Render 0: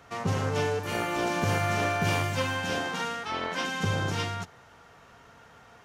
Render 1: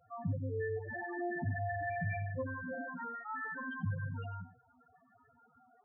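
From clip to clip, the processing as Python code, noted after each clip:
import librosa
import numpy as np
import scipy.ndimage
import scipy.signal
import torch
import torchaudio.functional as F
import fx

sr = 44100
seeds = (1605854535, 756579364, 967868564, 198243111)

y = fx.comb_fb(x, sr, f0_hz=250.0, decay_s=0.18, harmonics='odd', damping=0.0, mix_pct=70)
y = fx.spec_topn(y, sr, count=4)
y = y + 10.0 ** (-15.5 / 20.0) * np.pad(y, (int(94 * sr / 1000.0), 0))[:len(y)]
y = F.gain(torch.from_numpy(y), 4.0).numpy()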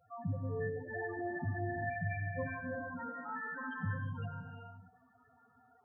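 y = fx.rev_gated(x, sr, seeds[0], gate_ms=450, shape='rising', drr_db=3.5)
y = F.gain(torch.from_numpy(y), -1.5).numpy()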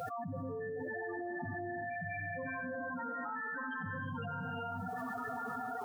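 y = scipy.signal.sosfilt(scipy.signal.butter(2, 190.0, 'highpass', fs=sr, output='sos'), x)
y = fx.env_flatten(y, sr, amount_pct=100)
y = F.gain(torch.from_numpy(y), -4.5).numpy()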